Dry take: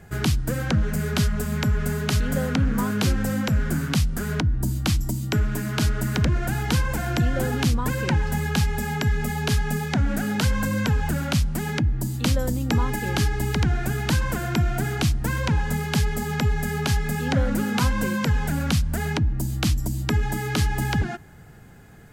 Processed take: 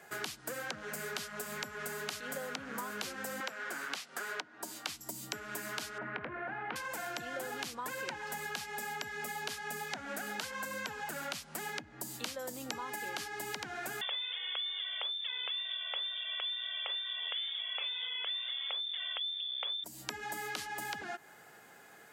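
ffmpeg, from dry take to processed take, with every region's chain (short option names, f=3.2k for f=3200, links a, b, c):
-filter_complex "[0:a]asettb=1/sr,asplit=3[a][b][c];[a]atrim=end=3.404[d];[b]atrim=start=3.4:end=4.89,asetpts=PTS-STARTPTS,afade=t=in:d=0.004:c=qsin,afade=t=out:st=1.486:d=0.004:c=qsin,highpass=240,asplit=2[e][f];[f]highpass=f=720:p=1,volume=9dB,asoftclip=type=tanh:threshold=-9.5dB[g];[e][g]amix=inputs=2:normalize=0,lowpass=f=3.5k:p=1,volume=-6dB[h];[c]atrim=start=4.886[i];[d][h]acrossfade=d=0.004:c1=hsin:c2=qsin[j];[j][i]acrossfade=d=0.004:c1=qsin:c2=hsin,asettb=1/sr,asplit=3[k][l][m];[k]atrim=end=5.984[n];[l]atrim=start=5.98:end=6.76,asetpts=PTS-STARTPTS,afade=t=in:d=0.004:c=qsin,afade=t=out:st=0.776:d=0.004:c=qsin,lowpass=f=2.2k:w=0.5412,lowpass=f=2.2k:w=1.3066,asplit=2[o][p];[p]adelay=22,volume=-13dB[q];[o][q]amix=inputs=2:normalize=0,atrim=end_sample=34398[r];[m]atrim=start=6.756[s];[n][r]acrossfade=d=0.004:c1=hsin:c2=qsin[t];[t][s]acrossfade=d=0.004:c1=qsin:c2=hsin,asettb=1/sr,asplit=3[u][v][w];[u]atrim=end=14.014[x];[v]atrim=start=14.01:end=19.84,asetpts=PTS-STARTPTS,afade=t=in:d=0.004:c=qsin,afade=t=out:st=5.826:d=0.004:c=qsin,lowpass=f=3.1k:t=q:w=0.5098,lowpass=f=3.1k:t=q:w=0.6013,lowpass=f=3.1k:t=q:w=0.9,lowpass=f=3.1k:t=q:w=2.563,afreqshift=-3600,highpass=f=440:t=q:w=2.3[y];[w]atrim=start=19.836[z];[x][y]acrossfade=d=0.004:c1=hsin:c2=qsin[aa];[aa][z]acrossfade=d=0.004:c1=qsin:c2=hsin,highpass=540,acompressor=threshold=-36dB:ratio=6,volume=-1dB"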